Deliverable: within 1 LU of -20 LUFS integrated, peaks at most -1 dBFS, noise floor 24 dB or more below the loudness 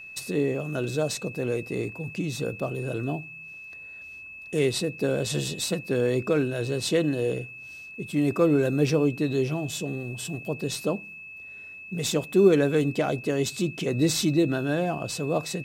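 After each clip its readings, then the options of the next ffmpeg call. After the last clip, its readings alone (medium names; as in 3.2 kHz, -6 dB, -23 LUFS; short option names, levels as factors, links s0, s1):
steady tone 2.6 kHz; tone level -40 dBFS; loudness -26.5 LUFS; peak level -7.5 dBFS; loudness target -20.0 LUFS
-> -af "bandreject=f=2600:w=30"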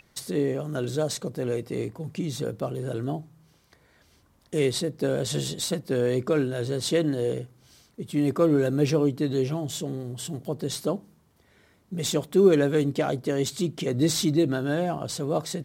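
steady tone not found; loudness -26.5 LUFS; peak level -8.0 dBFS; loudness target -20.0 LUFS
-> -af "volume=2.11"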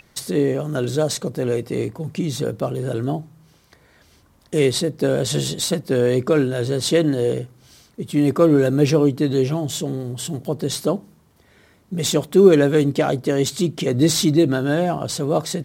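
loudness -20.0 LUFS; peak level -1.5 dBFS; noise floor -56 dBFS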